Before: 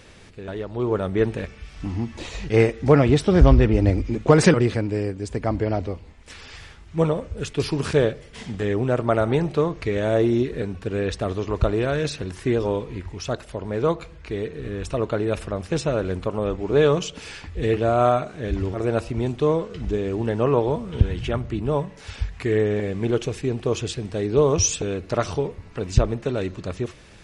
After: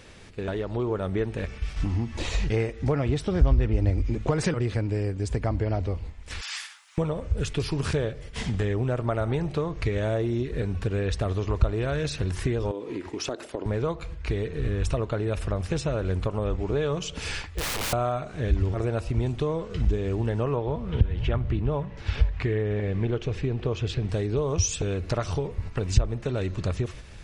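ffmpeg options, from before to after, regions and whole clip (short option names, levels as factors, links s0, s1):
-filter_complex "[0:a]asettb=1/sr,asplit=3[s0][s1][s2];[s0]atrim=end=6.414[s3];[s1]atrim=start=6.41:end=6.98,asetpts=PTS-STARTPTS,afade=t=in:d=0.004:c=qsin,afade=t=out:st=0.566:d=0.004:c=qsin,highpass=f=940:w=0.5412,highpass=f=940:w=1.3066,aemphasis=mode=production:type=50kf[s4];[s2]atrim=start=6.976[s5];[s3][s4]acrossfade=d=0.004:c1=hsin:c2=qsin[s6];[s6][s5]acrossfade=d=0.004:c1=qsin:c2=hsin,asettb=1/sr,asplit=3[s7][s8][s9];[s7]atrim=end=12.714[s10];[s8]atrim=start=12.71:end=13.66,asetpts=PTS-STARTPTS,afade=t=in:d=0.004:c=qsin,afade=t=out:st=0.946:d=0.004:c=qsin,highpass=f=310:t=q:w=3,acompressor=threshold=0.0251:ratio=2:attack=3.2:release=140:knee=1:detection=peak[s11];[s9]atrim=start=13.656[s12];[s10][s11]acrossfade=d=0.004:c1=hsin:c2=qsin[s13];[s13][s12]acrossfade=d=0.004:c1=qsin:c2=hsin,asettb=1/sr,asplit=3[s14][s15][s16];[s14]atrim=end=17.424[s17];[s15]atrim=start=17.42:end=17.93,asetpts=PTS-STARTPTS,afade=t=in:d=0.004:c=qsin,afade=t=out:st=0.506:d=0.004:c=qsin,lowshelf=f=330:g=-11.5,bandreject=f=50:t=h:w=6,bandreject=f=100:t=h:w=6,bandreject=f=150:t=h:w=6,bandreject=f=200:t=h:w=6,bandreject=f=250:t=h:w=6,aeval=exprs='(mod(26.6*val(0)+1,2)-1)/26.6':c=same[s18];[s16]atrim=start=17.926[s19];[s17][s18]acrossfade=d=0.004:c1=hsin:c2=qsin[s20];[s20][s19]acrossfade=d=0.004:c1=qsin:c2=hsin,asettb=1/sr,asplit=3[s21][s22][s23];[s21]atrim=end=20.564[s24];[s22]atrim=start=20.56:end=24.09,asetpts=PTS-STARTPTS,afade=t=in:d=0.004:c=qsin,afade=t=out:st=3.526:d=0.004:c=qsin,lowpass=3900,aecho=1:1:496|992:0.0708|0.0177,atrim=end_sample=155673[s25];[s23]atrim=start=24.086[s26];[s24][s25]acrossfade=d=0.004:c1=hsin:c2=qsin[s27];[s27][s26]acrossfade=d=0.004:c1=qsin:c2=hsin,agate=range=0.447:threshold=0.00891:ratio=16:detection=peak,acompressor=threshold=0.02:ratio=3,asubboost=boost=2.5:cutoff=130,volume=2"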